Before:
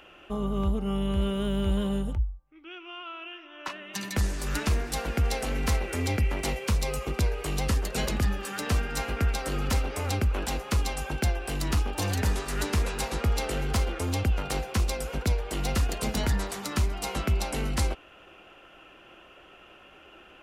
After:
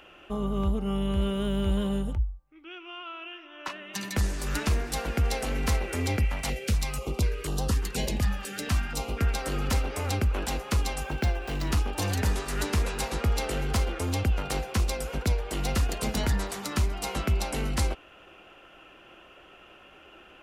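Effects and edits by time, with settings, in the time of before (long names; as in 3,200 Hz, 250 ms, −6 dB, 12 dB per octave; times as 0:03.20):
0:06.25–0:09.21: notch on a step sequencer 4.1 Hz 360–2,200 Hz
0:11.03–0:11.72: running median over 5 samples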